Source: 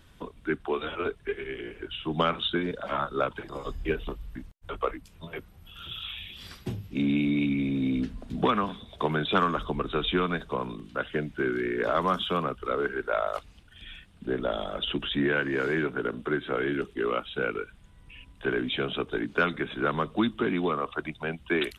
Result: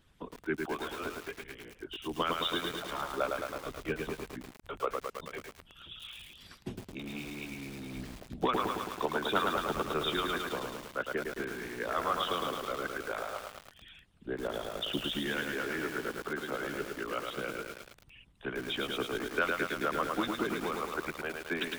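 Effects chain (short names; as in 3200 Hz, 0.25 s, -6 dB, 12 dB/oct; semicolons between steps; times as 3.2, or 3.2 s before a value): harmonic-percussive split harmonic -17 dB; lo-fi delay 0.108 s, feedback 80%, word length 7-bit, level -3 dB; gain -4 dB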